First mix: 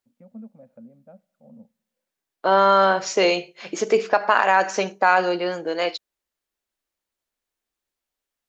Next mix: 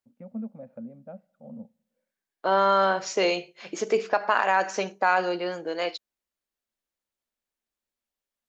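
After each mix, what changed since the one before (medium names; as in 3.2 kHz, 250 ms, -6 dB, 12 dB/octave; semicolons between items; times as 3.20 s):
first voice +5.5 dB; second voice -5.0 dB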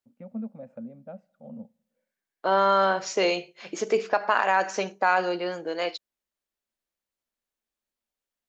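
first voice: remove distance through air 300 m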